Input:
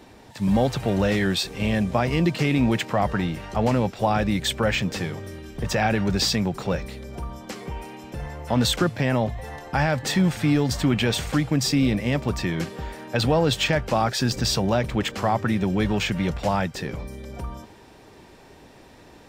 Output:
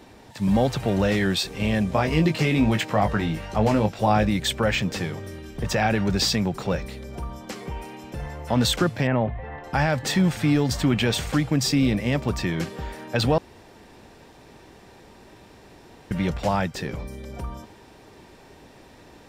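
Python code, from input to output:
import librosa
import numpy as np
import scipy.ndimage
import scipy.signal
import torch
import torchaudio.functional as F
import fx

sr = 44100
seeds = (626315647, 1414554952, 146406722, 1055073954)

y = fx.doubler(x, sr, ms=19.0, db=-6, at=(1.93, 4.29))
y = fx.lowpass(y, sr, hz=2600.0, slope=24, at=(9.07, 9.64))
y = fx.edit(y, sr, fx.room_tone_fill(start_s=13.38, length_s=2.73), tone=tone)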